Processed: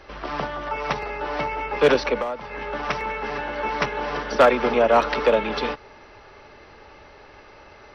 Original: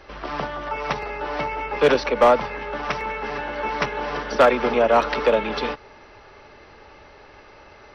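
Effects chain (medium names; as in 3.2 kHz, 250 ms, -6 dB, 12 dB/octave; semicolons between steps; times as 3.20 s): 2.16–2.58 s: compression 12:1, threshold -25 dBFS, peak gain reduction 14.5 dB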